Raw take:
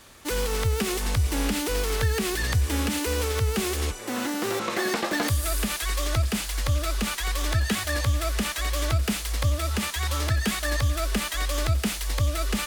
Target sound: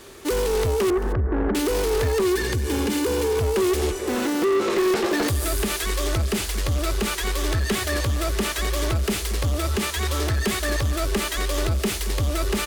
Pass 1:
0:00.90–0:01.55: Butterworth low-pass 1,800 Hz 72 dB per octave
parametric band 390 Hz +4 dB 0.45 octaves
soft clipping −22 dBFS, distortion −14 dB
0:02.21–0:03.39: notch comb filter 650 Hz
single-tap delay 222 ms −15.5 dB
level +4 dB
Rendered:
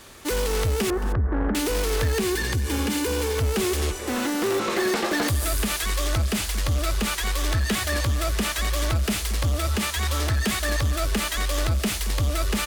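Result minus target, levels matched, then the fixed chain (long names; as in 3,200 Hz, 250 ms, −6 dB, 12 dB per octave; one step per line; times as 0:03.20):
500 Hz band −3.5 dB
0:00.90–0:01.55: Butterworth low-pass 1,800 Hz 72 dB per octave
parametric band 390 Hz +15.5 dB 0.45 octaves
soft clipping −22 dBFS, distortion −10 dB
0:02.21–0:03.39: notch comb filter 650 Hz
single-tap delay 222 ms −15.5 dB
level +4 dB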